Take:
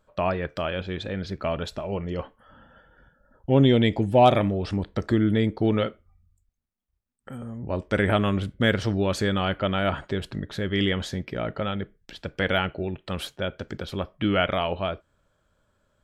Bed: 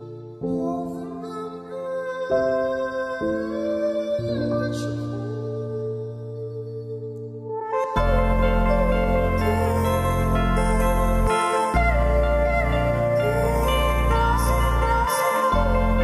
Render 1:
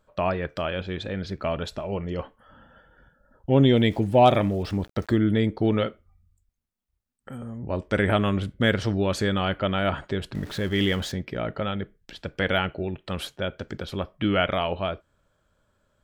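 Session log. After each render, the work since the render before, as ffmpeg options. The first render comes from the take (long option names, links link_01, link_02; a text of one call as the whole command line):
ffmpeg -i in.wav -filter_complex "[0:a]asettb=1/sr,asplit=3[link_01][link_02][link_03];[link_01]atrim=end=3.754[link_04];[link_02]atrim=start=3.75:end=5.17,asetpts=PTS-STARTPTS,afade=type=in:duration=0.004:curve=qsin,afade=type=out:start_time=1.416:duration=0.004:curve=qsin,aeval=exprs='val(0)*gte(abs(val(0)),0.00501)':channel_layout=same[link_05];[link_03]atrim=start=5.166[link_06];[link_04][link_05]acrossfade=duration=0.004:curve1=hsin:curve2=qsin[link_07];[link_07][link_06]acrossfade=duration=0.004:curve1=qsin:curve2=hsin,asettb=1/sr,asplit=3[link_08][link_09][link_10];[link_08]atrim=end=10.354[link_11];[link_09]atrim=start=10.35:end=11.12,asetpts=PTS-STARTPTS,afade=type=in:duration=0.004:curve=qsin,afade=type=out:start_time=0.766:duration=0.004:curve=qsin,aeval=exprs='val(0)+0.5*0.0119*sgn(val(0))':channel_layout=same[link_12];[link_10]atrim=start=11.116[link_13];[link_11][link_12]acrossfade=duration=0.004:curve1=hsin:curve2=qsin[link_14];[link_14][link_13]acrossfade=duration=0.004:curve1=qsin:curve2=hsin" out.wav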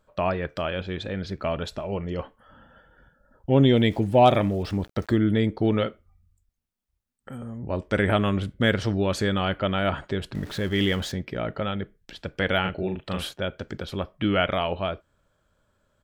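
ffmpeg -i in.wav -filter_complex "[0:a]asplit=3[link_01][link_02][link_03];[link_01]afade=type=out:start_time=12.64:duration=0.02[link_04];[link_02]asplit=2[link_05][link_06];[link_06]adelay=38,volume=-3.5dB[link_07];[link_05][link_07]amix=inputs=2:normalize=0,afade=type=in:start_time=12.64:duration=0.02,afade=type=out:start_time=13.33:duration=0.02[link_08];[link_03]afade=type=in:start_time=13.33:duration=0.02[link_09];[link_04][link_08][link_09]amix=inputs=3:normalize=0" out.wav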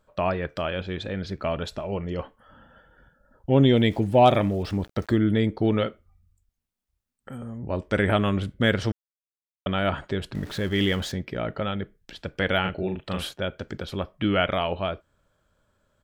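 ffmpeg -i in.wav -filter_complex "[0:a]asplit=3[link_01][link_02][link_03];[link_01]atrim=end=8.92,asetpts=PTS-STARTPTS,afade=type=out:start_time=8.916:duration=0.004:curve=hsin[link_04];[link_02]atrim=start=8.92:end=9.66,asetpts=PTS-STARTPTS,volume=0[link_05];[link_03]atrim=start=9.66,asetpts=PTS-STARTPTS,afade=type=in:duration=0.004:curve=hsin[link_06];[link_04][link_05][link_06]concat=n=3:v=0:a=1" out.wav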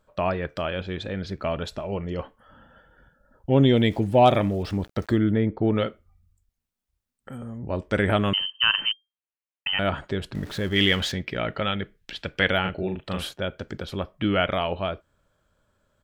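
ffmpeg -i in.wav -filter_complex "[0:a]asplit=3[link_01][link_02][link_03];[link_01]afade=type=out:start_time=5.29:duration=0.02[link_04];[link_02]lowpass=1900,afade=type=in:start_time=5.29:duration=0.02,afade=type=out:start_time=5.74:duration=0.02[link_05];[link_03]afade=type=in:start_time=5.74:duration=0.02[link_06];[link_04][link_05][link_06]amix=inputs=3:normalize=0,asettb=1/sr,asplit=3[link_07][link_08][link_09];[link_07]atrim=end=8.334[link_10];[link_08]atrim=start=8.33:end=9.79,asetpts=PTS-STARTPTS,afade=type=in:duration=0.004:curve=qsin,afade=type=out:start_time=1.456:duration=0.004:curve=qsin,lowpass=frequency=2700:width_type=q:width=0.5098,lowpass=frequency=2700:width_type=q:width=0.6013,lowpass=frequency=2700:width_type=q:width=0.9,lowpass=frequency=2700:width_type=q:width=2.563,afreqshift=-3200[link_11];[link_09]atrim=start=9.786[link_12];[link_10][link_11]acrossfade=duration=0.004:curve1=hsin:curve2=qsin[link_13];[link_13][link_12]acrossfade=duration=0.004:curve1=qsin:curve2=hsin,asettb=1/sr,asplit=3[link_14][link_15][link_16];[link_14]atrim=end=10.764[link_17];[link_15]atrim=start=10.76:end=12.51,asetpts=PTS-STARTPTS,afade=type=in:duration=0.004:curve=qsin,afade=type=out:start_time=1.746:duration=0.004:curve=qsin,equalizer=frequency=2700:width=0.69:gain=8[link_18];[link_16]atrim=start=12.506[link_19];[link_17][link_18]acrossfade=duration=0.004:curve1=hsin:curve2=qsin[link_20];[link_20][link_19]acrossfade=duration=0.004:curve1=qsin:curve2=hsin" out.wav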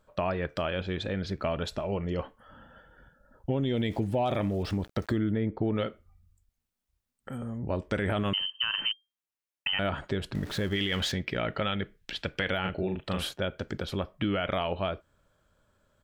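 ffmpeg -i in.wav -af "alimiter=limit=-14.5dB:level=0:latency=1:release=24,acompressor=threshold=-27dB:ratio=2.5" out.wav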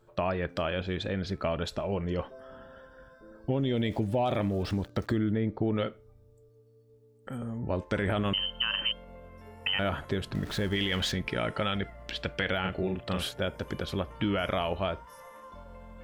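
ffmpeg -i in.wav -i bed.wav -filter_complex "[1:a]volume=-28dB[link_01];[0:a][link_01]amix=inputs=2:normalize=0" out.wav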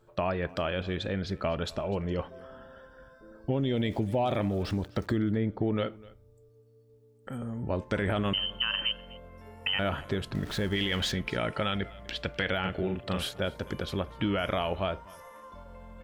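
ffmpeg -i in.wav -af "aecho=1:1:251:0.0794" out.wav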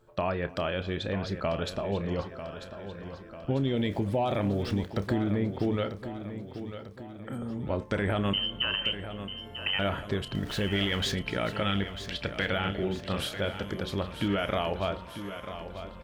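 ffmpeg -i in.wav -filter_complex "[0:a]asplit=2[link_01][link_02];[link_02]adelay=30,volume=-14dB[link_03];[link_01][link_03]amix=inputs=2:normalize=0,aecho=1:1:944|1888|2832|3776|4720|5664:0.282|0.149|0.0792|0.042|0.0222|0.0118" out.wav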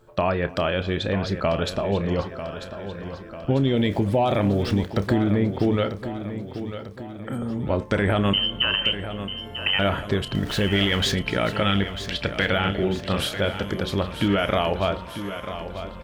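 ffmpeg -i in.wav -af "volume=7dB" out.wav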